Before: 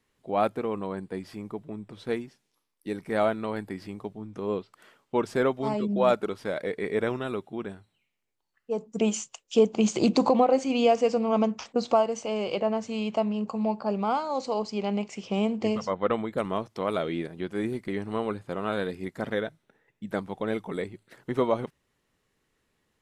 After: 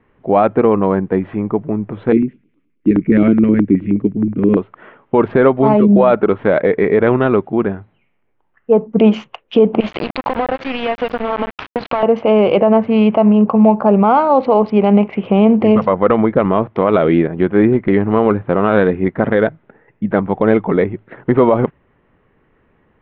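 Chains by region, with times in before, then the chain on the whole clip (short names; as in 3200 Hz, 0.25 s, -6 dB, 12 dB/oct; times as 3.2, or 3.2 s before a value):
2.12–4.57 EQ curve 110 Hz 0 dB, 300 Hz +10 dB, 790 Hz -25 dB, 2200 Hz +1 dB, 8800 Hz -20 dB + LFO notch square 9.5 Hz 320–1800 Hz
9.8–12.03 tilt shelf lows -8.5 dB, about 890 Hz + compressor 5:1, threshold -32 dBFS + sample gate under -34 dBFS
whole clip: Wiener smoothing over 9 samples; Bessel low-pass 2000 Hz, order 6; maximiser +20 dB; gain -1 dB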